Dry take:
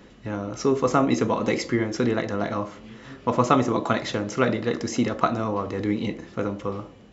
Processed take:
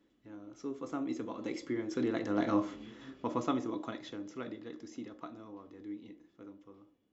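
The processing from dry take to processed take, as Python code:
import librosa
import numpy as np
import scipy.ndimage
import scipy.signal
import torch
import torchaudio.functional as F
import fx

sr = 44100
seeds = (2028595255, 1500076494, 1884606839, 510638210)

y = fx.doppler_pass(x, sr, speed_mps=5, closest_m=1.3, pass_at_s=2.62)
y = fx.low_shelf(y, sr, hz=390.0, db=-4.0)
y = fx.small_body(y, sr, hz=(300.0, 3400.0), ring_ms=50, db=14)
y = F.gain(torch.from_numpy(y), -5.0).numpy()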